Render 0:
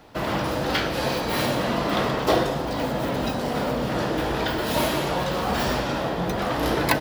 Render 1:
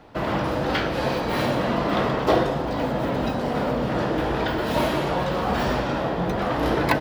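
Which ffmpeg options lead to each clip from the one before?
-af "highshelf=f=4300:g=-12,volume=1.19"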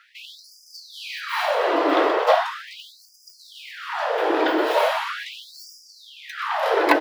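-af "bass=f=250:g=8,treble=f=4000:g=-5,afftfilt=real='re*gte(b*sr/1024,260*pow(4800/260,0.5+0.5*sin(2*PI*0.39*pts/sr)))':imag='im*gte(b*sr/1024,260*pow(4800/260,0.5+0.5*sin(2*PI*0.39*pts/sr)))':win_size=1024:overlap=0.75,volume=1.68"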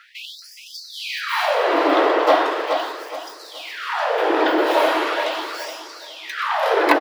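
-filter_complex "[0:a]asplit=2[s0][s1];[s1]acompressor=threshold=0.0398:ratio=6,volume=0.891[s2];[s0][s2]amix=inputs=2:normalize=0,asplit=2[s3][s4];[s4]adelay=421,lowpass=f=4100:p=1,volume=0.501,asplit=2[s5][s6];[s6]adelay=421,lowpass=f=4100:p=1,volume=0.33,asplit=2[s7][s8];[s8]adelay=421,lowpass=f=4100:p=1,volume=0.33,asplit=2[s9][s10];[s10]adelay=421,lowpass=f=4100:p=1,volume=0.33[s11];[s3][s5][s7][s9][s11]amix=inputs=5:normalize=0"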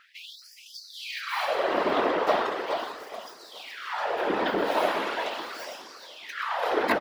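-af "afftfilt=real='hypot(re,im)*cos(2*PI*random(0))':imag='hypot(re,im)*sin(2*PI*random(1))':win_size=512:overlap=0.75,volume=0.794"

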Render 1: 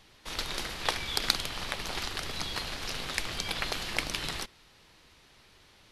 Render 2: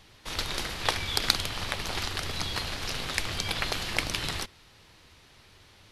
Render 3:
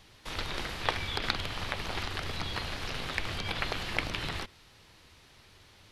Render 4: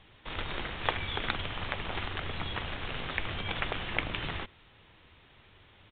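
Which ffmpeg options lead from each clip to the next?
-af "equalizer=f=94:w=2:g=7,volume=1.33"
-filter_complex "[0:a]acrossover=split=3700[s0][s1];[s1]acompressor=threshold=0.00562:ratio=4:attack=1:release=60[s2];[s0][s2]amix=inputs=2:normalize=0,volume=0.841"
-af "aresample=8000,aresample=44100"

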